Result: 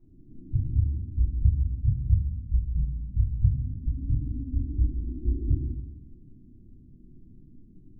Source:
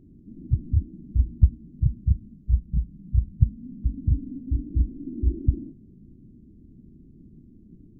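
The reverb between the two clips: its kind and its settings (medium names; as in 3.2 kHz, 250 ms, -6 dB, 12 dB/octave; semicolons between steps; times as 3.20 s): simulated room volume 100 m³, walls mixed, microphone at 3.7 m; trim -18.5 dB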